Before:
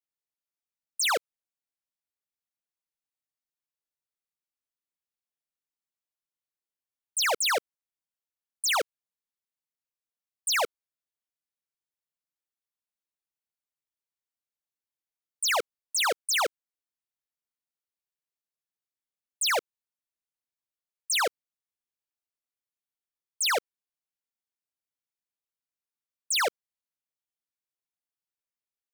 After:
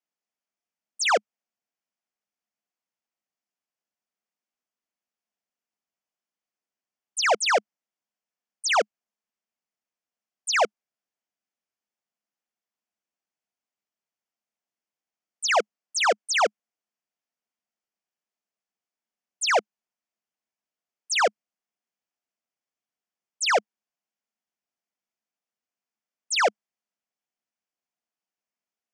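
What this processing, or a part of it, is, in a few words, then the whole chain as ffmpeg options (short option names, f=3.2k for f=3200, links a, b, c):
television speaker: -af "highpass=190,equalizer=f=210:t=q:w=4:g=9,equalizer=f=700:t=q:w=4:g=6,equalizer=f=3.9k:t=q:w=4:g=-10,lowpass=f=6.8k:w=0.5412,lowpass=f=6.8k:w=1.3066,volume=4dB"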